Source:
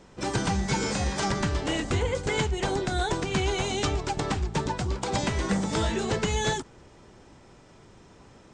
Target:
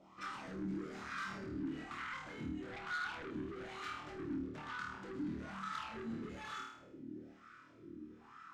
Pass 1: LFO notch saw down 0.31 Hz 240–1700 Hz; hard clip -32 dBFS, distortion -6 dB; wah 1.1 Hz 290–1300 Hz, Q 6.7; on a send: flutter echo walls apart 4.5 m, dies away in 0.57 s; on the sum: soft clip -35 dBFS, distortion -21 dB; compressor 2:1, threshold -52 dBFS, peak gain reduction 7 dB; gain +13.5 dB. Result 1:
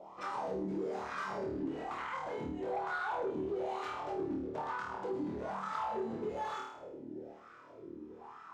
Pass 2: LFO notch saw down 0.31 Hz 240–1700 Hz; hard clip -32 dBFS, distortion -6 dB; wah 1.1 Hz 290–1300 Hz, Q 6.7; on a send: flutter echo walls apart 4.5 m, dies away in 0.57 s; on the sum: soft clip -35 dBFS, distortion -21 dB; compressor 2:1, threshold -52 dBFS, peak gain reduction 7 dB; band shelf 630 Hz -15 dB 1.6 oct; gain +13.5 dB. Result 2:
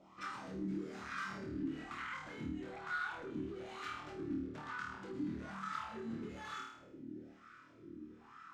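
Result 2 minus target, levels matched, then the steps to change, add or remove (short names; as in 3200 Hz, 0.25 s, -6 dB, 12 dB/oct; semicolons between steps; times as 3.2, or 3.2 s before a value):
soft clip: distortion -10 dB
change: soft clip -43 dBFS, distortion -11 dB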